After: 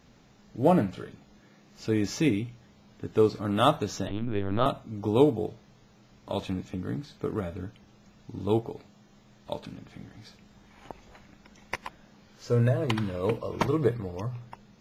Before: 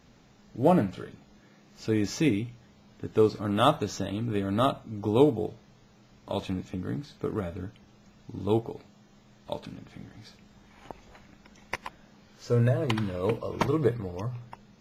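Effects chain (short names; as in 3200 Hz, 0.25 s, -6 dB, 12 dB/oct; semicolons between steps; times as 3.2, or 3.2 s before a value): 4.07–4.66 LPC vocoder at 8 kHz pitch kept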